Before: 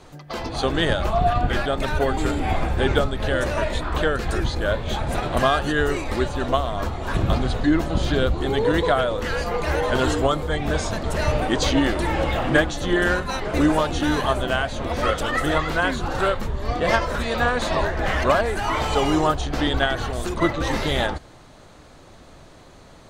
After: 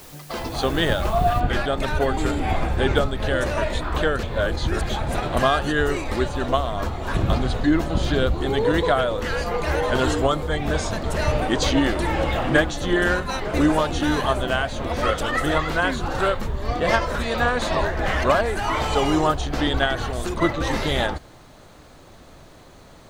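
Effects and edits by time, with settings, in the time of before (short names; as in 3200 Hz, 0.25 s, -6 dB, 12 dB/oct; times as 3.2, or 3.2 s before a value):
1.4 noise floor step -46 dB -67 dB
4.23–4.89 reverse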